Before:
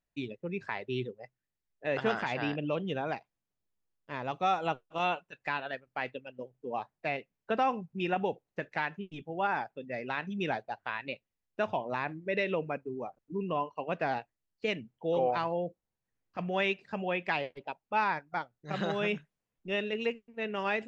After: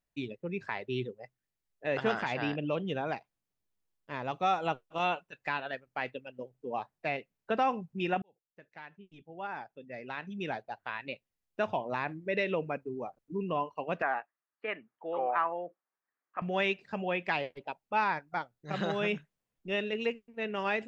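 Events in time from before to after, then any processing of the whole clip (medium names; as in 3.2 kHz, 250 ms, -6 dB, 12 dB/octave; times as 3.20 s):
8.22–11.61 s: fade in
14.02–16.42 s: cabinet simulation 450–2300 Hz, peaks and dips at 490 Hz -5 dB, 1.2 kHz +9 dB, 1.7 kHz +5 dB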